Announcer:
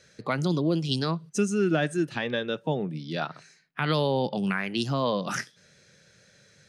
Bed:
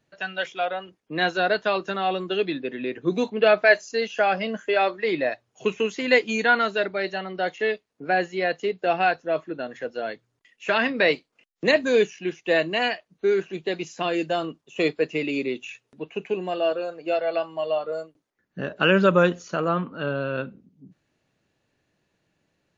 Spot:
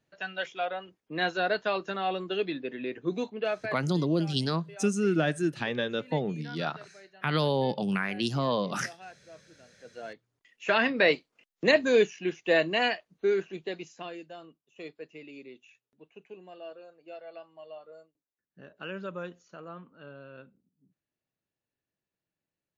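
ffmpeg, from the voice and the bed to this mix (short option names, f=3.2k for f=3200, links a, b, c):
-filter_complex "[0:a]adelay=3450,volume=-1.5dB[a];[1:a]volume=18dB,afade=t=out:st=2.98:d=0.82:silence=0.0944061,afade=t=in:st=9.77:d=0.86:silence=0.0668344,afade=t=out:st=13:d=1.24:silence=0.133352[b];[a][b]amix=inputs=2:normalize=0"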